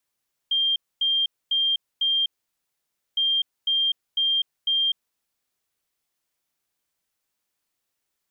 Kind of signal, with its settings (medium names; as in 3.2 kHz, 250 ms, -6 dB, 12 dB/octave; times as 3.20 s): beep pattern sine 3.19 kHz, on 0.25 s, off 0.25 s, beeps 4, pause 0.91 s, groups 2, -19 dBFS